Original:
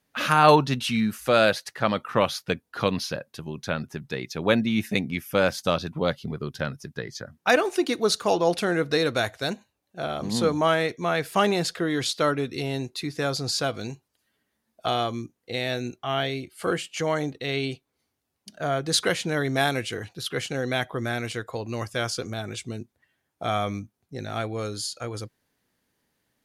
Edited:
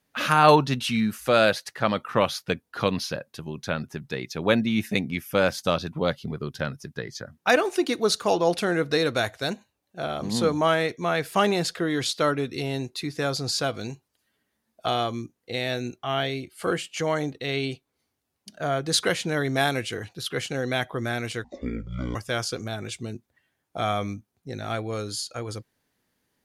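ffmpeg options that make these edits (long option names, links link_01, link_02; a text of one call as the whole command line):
ffmpeg -i in.wav -filter_complex "[0:a]asplit=3[link_01][link_02][link_03];[link_01]atrim=end=21.444[link_04];[link_02]atrim=start=21.44:end=21.81,asetpts=PTS-STARTPTS,asetrate=22932,aresample=44100[link_05];[link_03]atrim=start=21.806[link_06];[link_04][link_05]acrossfade=duration=0.004:curve1=hsin:curve2=hsin[link_07];[link_07][link_06]acrossfade=duration=0.004:curve1=hsin:curve2=hsin" out.wav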